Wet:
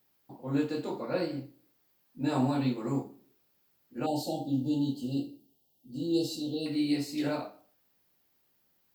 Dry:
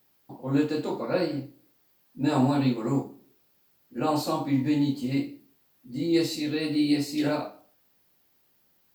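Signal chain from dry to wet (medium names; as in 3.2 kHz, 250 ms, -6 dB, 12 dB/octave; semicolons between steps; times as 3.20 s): 4.06–6.66 s: brick-wall FIR band-stop 900–2700 Hz; trim -5 dB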